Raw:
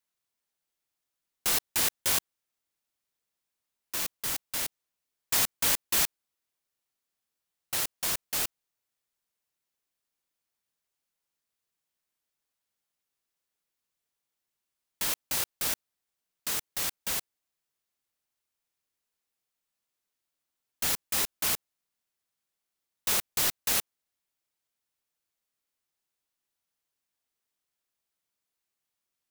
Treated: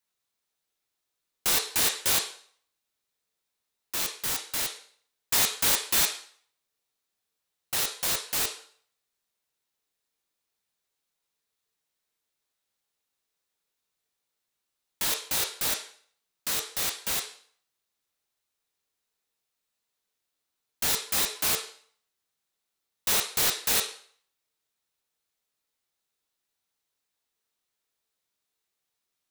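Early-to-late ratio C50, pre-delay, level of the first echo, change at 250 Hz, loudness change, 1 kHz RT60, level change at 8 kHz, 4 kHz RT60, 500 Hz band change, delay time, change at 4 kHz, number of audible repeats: 9.0 dB, 9 ms, no echo, +2.0 dB, +2.5 dB, 0.55 s, +2.5 dB, 0.50 s, +4.0 dB, no echo, +4.5 dB, no echo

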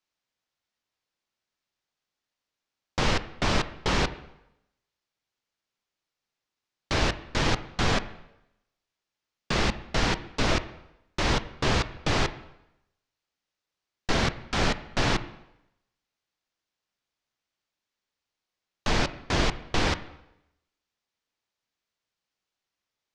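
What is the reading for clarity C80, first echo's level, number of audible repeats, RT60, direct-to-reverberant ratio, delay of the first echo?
17.0 dB, no echo, no echo, 0.85 s, 11.5 dB, no echo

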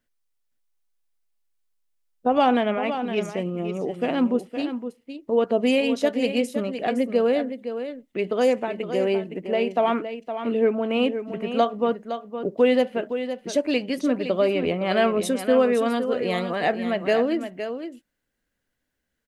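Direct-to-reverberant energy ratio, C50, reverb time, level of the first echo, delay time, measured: no reverb, no reverb, no reverb, -9.5 dB, 514 ms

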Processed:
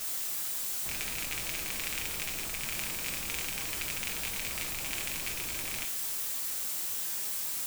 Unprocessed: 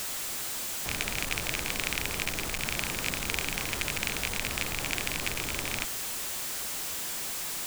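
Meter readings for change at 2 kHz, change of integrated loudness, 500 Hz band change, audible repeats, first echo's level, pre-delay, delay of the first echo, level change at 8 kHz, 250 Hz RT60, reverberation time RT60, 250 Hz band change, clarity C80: -5.5 dB, -1.5 dB, -7.5 dB, no echo, no echo, 6 ms, no echo, -1.5 dB, 0.90 s, 0.55 s, -7.5 dB, 16.0 dB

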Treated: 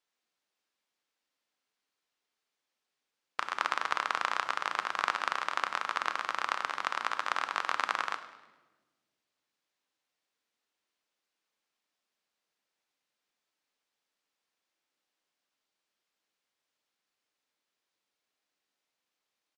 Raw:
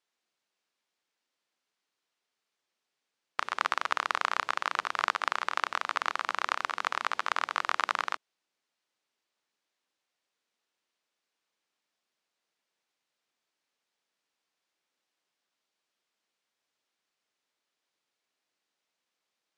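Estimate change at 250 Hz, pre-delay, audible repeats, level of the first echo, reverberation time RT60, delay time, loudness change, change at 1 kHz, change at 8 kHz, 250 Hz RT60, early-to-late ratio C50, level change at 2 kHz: -1.0 dB, 4 ms, 3, -16.5 dB, 1.3 s, 104 ms, -1.5 dB, -1.5 dB, -1.5 dB, 2.0 s, 11.5 dB, -1.5 dB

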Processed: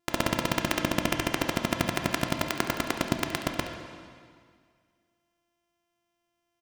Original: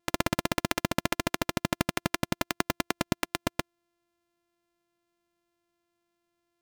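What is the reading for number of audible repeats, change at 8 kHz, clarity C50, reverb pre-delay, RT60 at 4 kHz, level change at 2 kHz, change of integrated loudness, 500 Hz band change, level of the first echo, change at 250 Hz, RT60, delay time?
1, +0.5 dB, 5.0 dB, 7 ms, 1.8 s, +1.5 dB, +1.5 dB, +2.0 dB, -14.0 dB, +1.5 dB, 2.0 s, 70 ms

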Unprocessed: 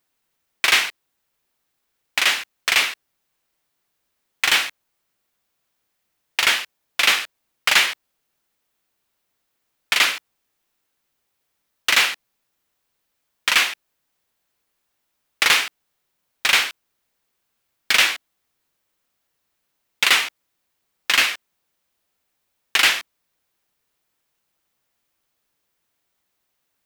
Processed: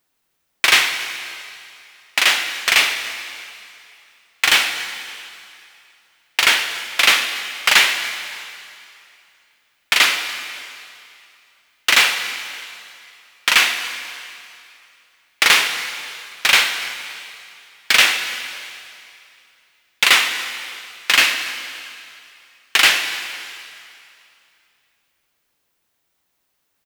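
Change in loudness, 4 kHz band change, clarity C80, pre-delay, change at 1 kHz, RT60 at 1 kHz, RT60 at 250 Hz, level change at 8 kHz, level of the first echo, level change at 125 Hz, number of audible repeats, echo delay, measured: +2.0 dB, +4.0 dB, 8.5 dB, 21 ms, +3.5 dB, 2.6 s, 2.3 s, +4.0 dB, -21.5 dB, no reading, 1, 286 ms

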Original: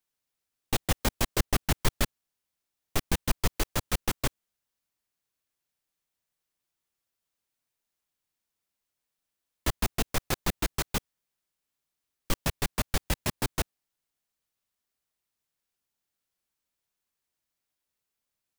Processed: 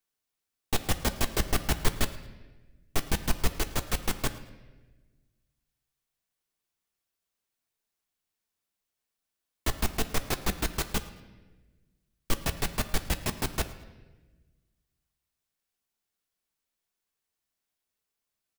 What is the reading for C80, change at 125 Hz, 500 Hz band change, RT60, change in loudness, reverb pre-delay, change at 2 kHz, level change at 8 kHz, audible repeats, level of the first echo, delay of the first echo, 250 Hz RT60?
14.0 dB, -1.0 dB, 0.0 dB, 1.3 s, -0.5 dB, 3 ms, -0.5 dB, -0.5 dB, 1, -21.5 dB, 109 ms, 1.7 s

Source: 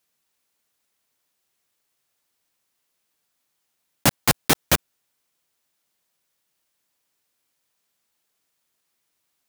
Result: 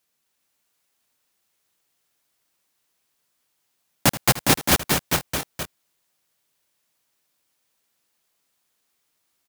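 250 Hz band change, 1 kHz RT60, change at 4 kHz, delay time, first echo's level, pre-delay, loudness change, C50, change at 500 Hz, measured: +2.5 dB, no reverb, +2.5 dB, 79 ms, -16.0 dB, no reverb, -0.5 dB, no reverb, +2.0 dB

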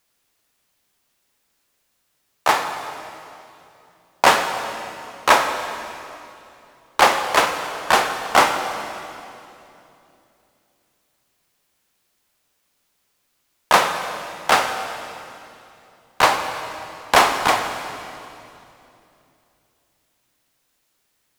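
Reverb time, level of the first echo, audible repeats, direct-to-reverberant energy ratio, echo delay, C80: 2.9 s, no echo, no echo, 6.0 dB, no echo, 7.5 dB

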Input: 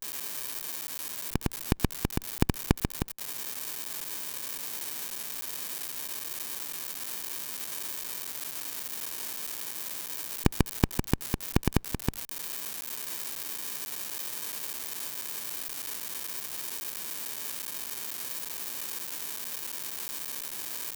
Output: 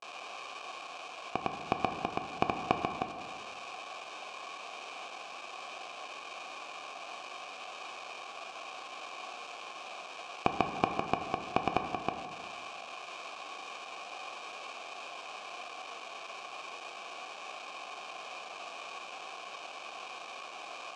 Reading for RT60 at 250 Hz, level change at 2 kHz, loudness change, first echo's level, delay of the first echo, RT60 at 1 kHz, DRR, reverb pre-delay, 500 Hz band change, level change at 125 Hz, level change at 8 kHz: 1.8 s, +1.0 dB, -6.5 dB, no echo, no echo, 1.8 s, 4.5 dB, 5 ms, +1.5 dB, -14.5 dB, -17.5 dB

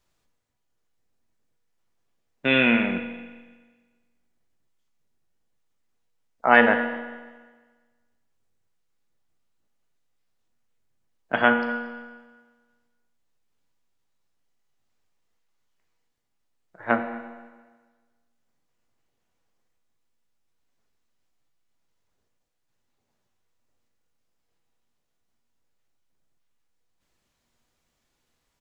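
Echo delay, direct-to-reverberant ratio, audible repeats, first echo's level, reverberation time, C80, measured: 233 ms, 5.5 dB, 1, -22.0 dB, 1.4 s, 9.0 dB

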